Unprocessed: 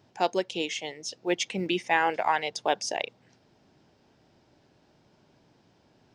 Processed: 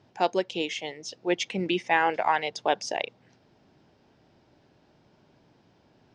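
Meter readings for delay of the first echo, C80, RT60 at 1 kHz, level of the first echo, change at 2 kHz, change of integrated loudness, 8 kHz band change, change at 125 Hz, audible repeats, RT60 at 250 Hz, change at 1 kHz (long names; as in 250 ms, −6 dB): no echo audible, no reverb audible, no reverb audible, no echo audible, +1.0 dB, +1.0 dB, −3.5 dB, +1.5 dB, no echo audible, no reverb audible, +1.0 dB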